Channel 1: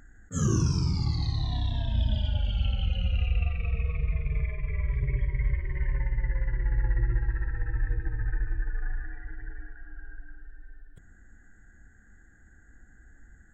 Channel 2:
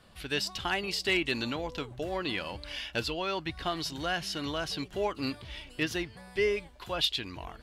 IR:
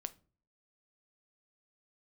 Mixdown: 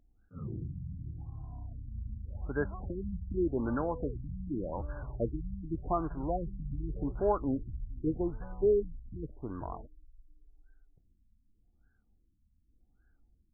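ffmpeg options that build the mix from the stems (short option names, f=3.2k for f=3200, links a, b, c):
-filter_complex "[0:a]volume=-14.5dB[a];[1:a]adelay=2250,volume=2.5dB[b];[a][b]amix=inputs=2:normalize=0,afftfilt=real='re*lt(b*sr/1024,250*pow(1700/250,0.5+0.5*sin(2*PI*0.86*pts/sr)))':imag='im*lt(b*sr/1024,250*pow(1700/250,0.5+0.5*sin(2*PI*0.86*pts/sr)))':win_size=1024:overlap=0.75"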